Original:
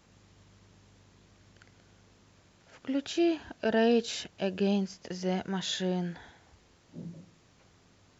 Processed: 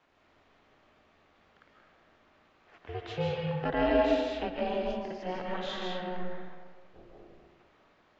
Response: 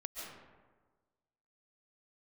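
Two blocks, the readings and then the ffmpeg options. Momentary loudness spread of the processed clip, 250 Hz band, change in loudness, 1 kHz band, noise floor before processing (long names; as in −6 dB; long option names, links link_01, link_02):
16 LU, −5.0 dB, −1.5 dB, +5.0 dB, −63 dBFS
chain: -filter_complex "[0:a]acrossover=split=340 3500:gain=0.178 1 0.0708[link_01][link_02][link_03];[link_01][link_02][link_03]amix=inputs=3:normalize=0,aeval=exprs='val(0)*sin(2*PI*180*n/s)':channel_layout=same[link_04];[1:a]atrim=start_sample=2205,asetrate=42777,aresample=44100[link_05];[link_04][link_05]afir=irnorm=-1:irlink=0,volume=6dB"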